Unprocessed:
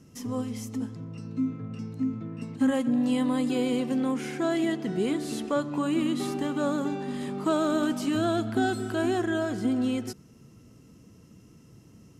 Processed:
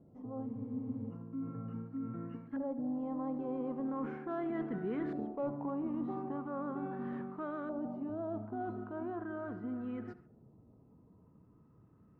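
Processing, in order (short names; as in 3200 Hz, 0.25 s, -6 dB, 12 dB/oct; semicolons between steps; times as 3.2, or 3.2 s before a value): Doppler pass-by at 4.85, 11 m/s, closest 7.7 m; LFO low-pass saw up 0.39 Hz 700–1700 Hz; added harmonics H 6 -34 dB, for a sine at -15 dBFS; reverse; compressor 4:1, threshold -47 dBFS, peak gain reduction 21 dB; reverse; high shelf 2200 Hz -8 dB; tape echo 70 ms, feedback 45%, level -14.5 dB; spectral freeze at 0.49, 0.62 s; gain +9 dB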